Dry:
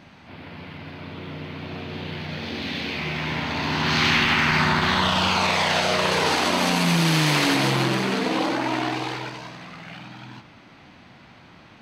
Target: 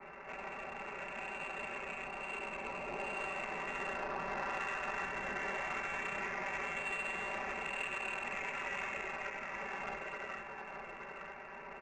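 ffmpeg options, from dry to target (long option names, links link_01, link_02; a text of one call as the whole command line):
ffmpeg -i in.wav -filter_complex "[0:a]tiltshelf=frequency=750:gain=-4,aecho=1:1:5.2:0.88,adynamicequalizer=threshold=0.0126:dfrequency=140:dqfactor=0.88:tfrequency=140:tqfactor=0.88:attack=5:release=100:ratio=0.375:range=3.5:mode=boostabove:tftype=bell,acompressor=threshold=-37dB:ratio=6,lowpass=frequency=2500:width_type=q:width=0.5098,lowpass=frequency=2500:width_type=q:width=0.6013,lowpass=frequency=2500:width_type=q:width=0.9,lowpass=frequency=2500:width_type=q:width=2.563,afreqshift=-2900,asplit=2[link_01][link_02];[link_02]aecho=0:1:873:0.596[link_03];[link_01][link_03]amix=inputs=2:normalize=0,adynamicsmooth=sensitivity=3.5:basefreq=1300,volume=1dB" out.wav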